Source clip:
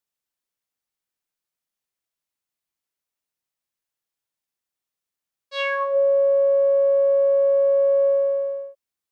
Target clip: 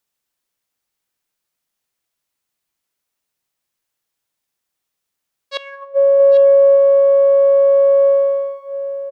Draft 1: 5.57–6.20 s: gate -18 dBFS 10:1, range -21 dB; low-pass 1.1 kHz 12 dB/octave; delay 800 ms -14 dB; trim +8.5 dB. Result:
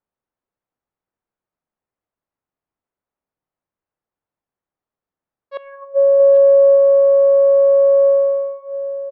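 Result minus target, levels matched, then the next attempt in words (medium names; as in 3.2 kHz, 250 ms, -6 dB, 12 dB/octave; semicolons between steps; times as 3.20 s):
1 kHz band -3.0 dB
5.57–6.20 s: gate -18 dBFS 10:1, range -21 dB; delay 800 ms -14 dB; trim +8.5 dB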